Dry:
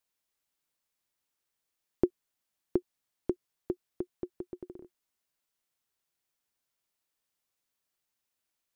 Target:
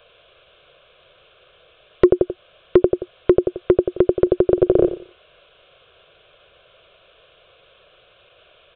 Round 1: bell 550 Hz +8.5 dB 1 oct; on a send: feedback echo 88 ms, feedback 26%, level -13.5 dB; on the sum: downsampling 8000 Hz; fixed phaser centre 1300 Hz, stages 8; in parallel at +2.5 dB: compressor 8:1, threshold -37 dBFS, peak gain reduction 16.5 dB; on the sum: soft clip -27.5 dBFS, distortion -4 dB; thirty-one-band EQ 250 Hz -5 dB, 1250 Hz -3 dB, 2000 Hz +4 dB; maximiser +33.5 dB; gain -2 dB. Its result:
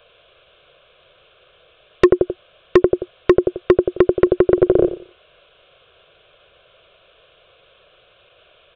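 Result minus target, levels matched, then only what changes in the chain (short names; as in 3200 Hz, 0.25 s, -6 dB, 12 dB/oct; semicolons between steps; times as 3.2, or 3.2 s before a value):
compressor: peak gain reduction -6.5 dB; soft clip: distortion +9 dB
change: compressor 8:1, threshold -44.5 dBFS, peak gain reduction 23 dB; change: soft clip -17.5 dBFS, distortion -14 dB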